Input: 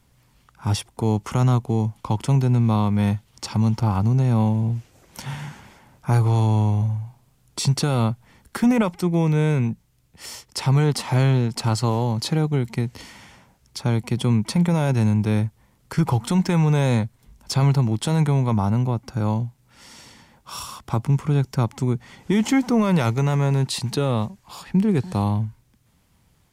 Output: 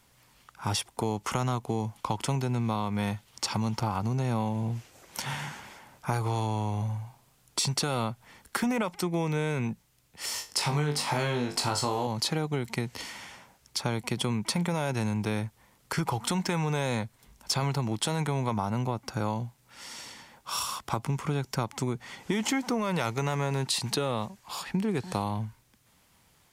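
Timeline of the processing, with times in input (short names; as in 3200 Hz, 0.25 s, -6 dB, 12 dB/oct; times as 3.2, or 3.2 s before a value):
10.33–12.07 flutter echo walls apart 3.5 m, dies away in 0.26 s
whole clip: low shelf 300 Hz -12 dB; compressor, threshold -28 dBFS; gain +3 dB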